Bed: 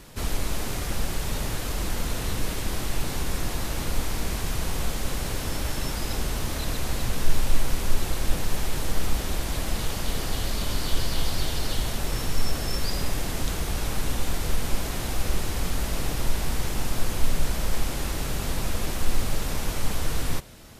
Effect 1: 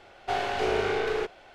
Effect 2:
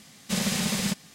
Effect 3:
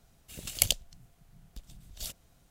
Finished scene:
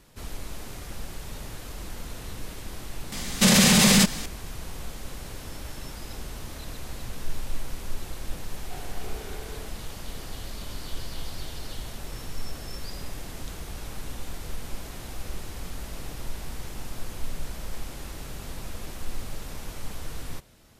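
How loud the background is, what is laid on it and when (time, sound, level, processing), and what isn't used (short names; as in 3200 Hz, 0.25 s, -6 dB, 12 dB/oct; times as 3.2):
bed -9.5 dB
3.12 add 2 -7 dB + maximiser +23 dB
8.42 add 1 -17 dB
not used: 3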